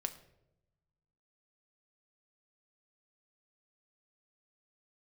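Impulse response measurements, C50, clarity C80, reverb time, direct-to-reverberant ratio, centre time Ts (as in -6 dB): 13.5 dB, 16.0 dB, 0.85 s, 6.5 dB, 8 ms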